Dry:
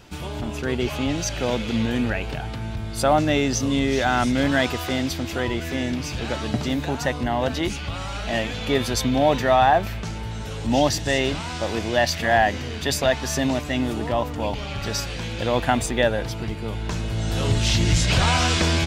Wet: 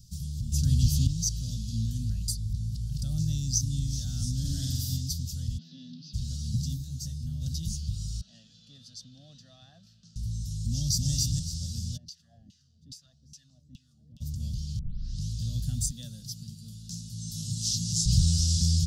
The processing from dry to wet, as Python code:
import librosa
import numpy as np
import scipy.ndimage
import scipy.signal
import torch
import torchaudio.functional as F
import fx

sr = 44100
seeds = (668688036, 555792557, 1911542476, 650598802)

y = fx.room_flutter(x, sr, wall_m=7.9, rt60_s=0.97, at=(4.44, 4.96), fade=0.02)
y = fx.ellip_bandpass(y, sr, low_hz=210.0, high_hz=3900.0, order=3, stop_db=40, at=(5.57, 6.13), fade=0.02)
y = fx.detune_double(y, sr, cents=11, at=(6.76, 7.4), fade=0.02)
y = fx.bandpass_edges(y, sr, low_hz=530.0, high_hz=2300.0, at=(8.21, 10.16))
y = fx.echo_throw(y, sr, start_s=10.7, length_s=0.41, ms=280, feedback_pct=25, wet_db=-1.0)
y = fx.filter_lfo_bandpass(y, sr, shape='saw_down', hz=2.4, low_hz=260.0, high_hz=2900.0, q=4.1, at=(11.96, 14.2), fade=0.02)
y = fx.highpass(y, sr, hz=210.0, slope=12, at=(15.91, 18.06))
y = fx.edit(y, sr, fx.clip_gain(start_s=0.52, length_s=0.55, db=9.0),
    fx.reverse_span(start_s=2.28, length_s=0.74),
    fx.tape_start(start_s=14.79, length_s=0.49), tone=tone)
y = scipy.signal.sosfilt(scipy.signal.ellip(3, 1.0, 40, [160.0, 5000.0], 'bandstop', fs=sr, output='sos'), y)